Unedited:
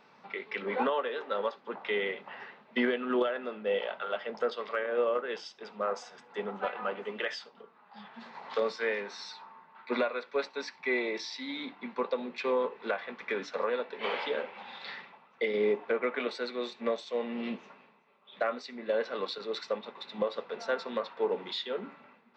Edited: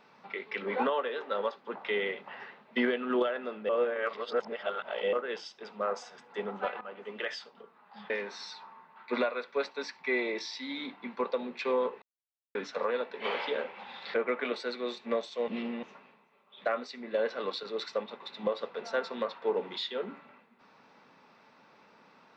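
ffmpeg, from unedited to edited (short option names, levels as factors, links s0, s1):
-filter_complex "[0:a]asplit=10[s0][s1][s2][s3][s4][s5][s6][s7][s8][s9];[s0]atrim=end=3.692[s10];[s1]atrim=start=3.688:end=5.132,asetpts=PTS-STARTPTS,areverse[s11];[s2]atrim=start=5.128:end=6.81,asetpts=PTS-STARTPTS,afade=t=out:st=1.678:d=0.004:c=hsin:silence=0.177828[s12];[s3]atrim=start=6.81:end=8.102,asetpts=PTS-STARTPTS,afade=t=in:d=0.75:c=qsin:silence=0.177828[s13];[s4]atrim=start=8.888:end=12.81,asetpts=PTS-STARTPTS,afade=t=out:st=3.918:d=0.004:c=hsin[s14];[s5]atrim=start=12.81:end=13.34,asetpts=PTS-STARTPTS,volume=0[s15];[s6]atrim=start=13.34:end=14.932,asetpts=PTS-STARTPTS,afade=t=in:d=0.004:c=hsin[s16];[s7]atrim=start=15.888:end=17.232[s17];[s8]atrim=start=17.228:end=17.582,asetpts=PTS-STARTPTS,areverse[s18];[s9]atrim=start=17.578[s19];[s10][s11]acrossfade=d=0.004:c1=hsin:c2=hsin[s20];[s12][s13]concat=n=2:v=0:a=1[s21];[s20][s21]acrossfade=d=0.004:c1=hsin:c2=hsin[s22];[s14][s15][s16]concat=n=3:v=0:a=1[s23];[s22][s23]acrossfade=d=0.004:c1=hsin:c2=hsin[s24];[s24][s17]acrossfade=d=0.004:c1=hsin:c2=hsin[s25];[s25][s18]acrossfade=d=0.004:c1=hsin:c2=hsin[s26];[s26][s19]acrossfade=d=0.004:c1=hsin:c2=hsin"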